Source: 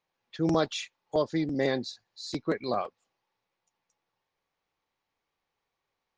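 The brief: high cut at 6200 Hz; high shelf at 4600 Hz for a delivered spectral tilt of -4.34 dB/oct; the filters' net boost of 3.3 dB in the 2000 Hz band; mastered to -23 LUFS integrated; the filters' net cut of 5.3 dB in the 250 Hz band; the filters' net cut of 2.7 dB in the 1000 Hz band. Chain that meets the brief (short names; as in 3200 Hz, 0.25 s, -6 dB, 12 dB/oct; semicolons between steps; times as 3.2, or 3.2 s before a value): LPF 6200 Hz; bell 250 Hz -7.5 dB; bell 1000 Hz -4.5 dB; bell 2000 Hz +4 dB; high shelf 4600 Hz +7 dB; gain +9.5 dB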